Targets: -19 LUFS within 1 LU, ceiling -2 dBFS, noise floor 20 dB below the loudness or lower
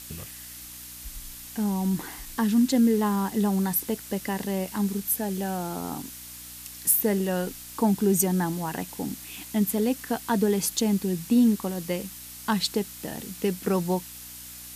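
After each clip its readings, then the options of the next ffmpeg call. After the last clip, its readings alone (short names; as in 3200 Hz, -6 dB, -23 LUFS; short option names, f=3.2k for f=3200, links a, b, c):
hum 60 Hz; harmonics up to 300 Hz; hum level -52 dBFS; noise floor -42 dBFS; noise floor target -46 dBFS; loudness -26.0 LUFS; peak -7.5 dBFS; loudness target -19.0 LUFS
-> -af "bandreject=f=60:t=h:w=4,bandreject=f=120:t=h:w=4,bandreject=f=180:t=h:w=4,bandreject=f=240:t=h:w=4,bandreject=f=300:t=h:w=4"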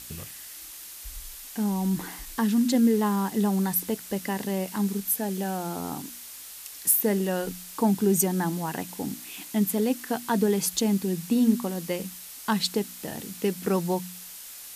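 hum none; noise floor -43 dBFS; noise floor target -47 dBFS
-> -af "afftdn=nr=6:nf=-43"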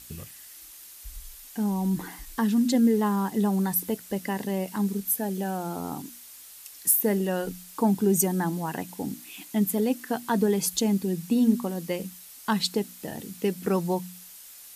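noise floor -47 dBFS; loudness -26.5 LUFS; peak -7.5 dBFS; loudness target -19.0 LUFS
-> -af "volume=7.5dB,alimiter=limit=-2dB:level=0:latency=1"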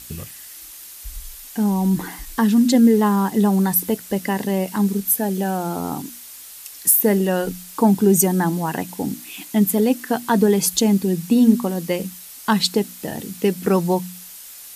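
loudness -19.0 LUFS; peak -2.0 dBFS; noise floor -39 dBFS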